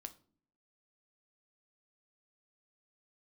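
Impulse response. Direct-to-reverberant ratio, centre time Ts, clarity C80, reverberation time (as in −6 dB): 8.5 dB, 4 ms, 22.0 dB, non-exponential decay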